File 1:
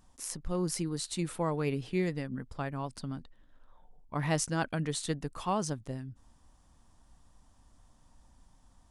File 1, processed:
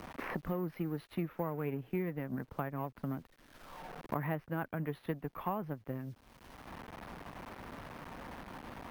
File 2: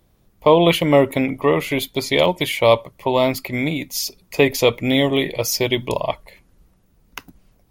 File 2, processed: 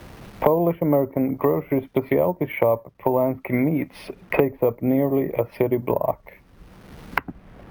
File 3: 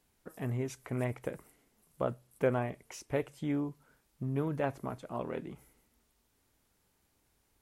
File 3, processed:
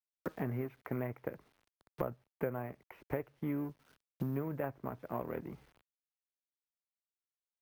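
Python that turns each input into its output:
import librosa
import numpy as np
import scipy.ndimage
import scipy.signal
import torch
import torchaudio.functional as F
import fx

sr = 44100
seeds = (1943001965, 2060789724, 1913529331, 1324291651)

y = fx.law_mismatch(x, sr, coded='A')
y = scipy.signal.sosfilt(scipy.signal.butter(4, 2300.0, 'lowpass', fs=sr, output='sos'), y)
y = fx.env_lowpass_down(y, sr, base_hz=920.0, full_db=-18.0)
y = fx.highpass(y, sr, hz=51.0, slope=6)
y = fx.vibrato(y, sr, rate_hz=12.0, depth_cents=13.0)
y = fx.quant_dither(y, sr, seeds[0], bits=12, dither='none')
y = np.repeat(scipy.signal.resample_poly(y, 1, 3), 3)[:len(y)]
y = fx.band_squash(y, sr, depth_pct=100)
y = y * librosa.db_to_amplitude(-2.0)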